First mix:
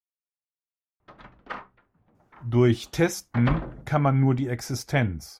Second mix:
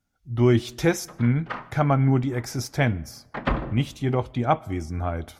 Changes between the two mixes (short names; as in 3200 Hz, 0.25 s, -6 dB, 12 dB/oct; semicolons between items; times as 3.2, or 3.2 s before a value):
speech: entry -2.15 s; reverb: on, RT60 1.1 s